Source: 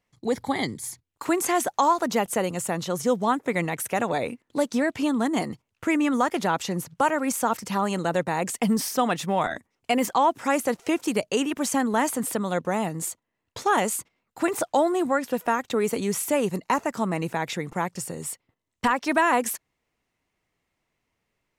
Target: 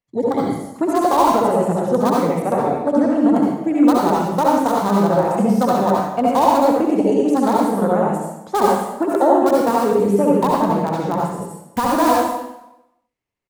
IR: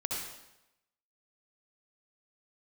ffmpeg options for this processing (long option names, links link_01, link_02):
-filter_complex "[0:a]afwtdn=0.0501,equalizer=frequency=87:width=6.2:gain=-2.5,atempo=1.6,acrossover=split=870|1200[link_01][link_02][link_03];[link_03]aeval=exprs='(mod(37.6*val(0)+1,2)-1)/37.6':channel_layout=same[link_04];[link_01][link_02][link_04]amix=inputs=3:normalize=0[link_05];[1:a]atrim=start_sample=2205[link_06];[link_05][link_06]afir=irnorm=-1:irlink=0,volume=5.5dB"